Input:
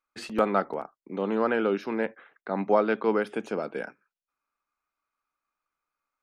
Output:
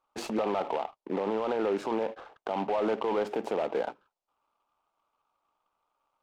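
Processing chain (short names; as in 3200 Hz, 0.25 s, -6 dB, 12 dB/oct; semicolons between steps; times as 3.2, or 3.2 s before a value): EQ curve 200 Hz 0 dB, 880 Hz +15 dB, 1900 Hz -8 dB, 5000 Hz +3 dB; limiter -22.5 dBFS, peak gain reduction 22.5 dB; air absorption 66 m; noise-modulated delay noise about 1600 Hz, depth 0.036 ms; gain +2 dB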